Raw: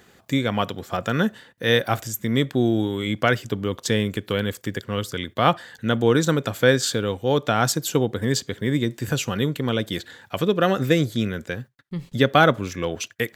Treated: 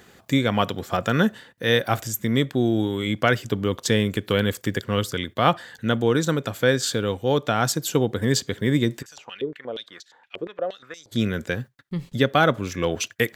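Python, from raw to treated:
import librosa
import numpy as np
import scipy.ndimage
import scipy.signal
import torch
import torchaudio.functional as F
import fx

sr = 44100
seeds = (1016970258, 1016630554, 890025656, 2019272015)

y = fx.rider(x, sr, range_db=3, speed_s=0.5)
y = fx.filter_held_bandpass(y, sr, hz=8.5, low_hz=400.0, high_hz=5700.0, at=(9.01, 11.11), fade=0.02)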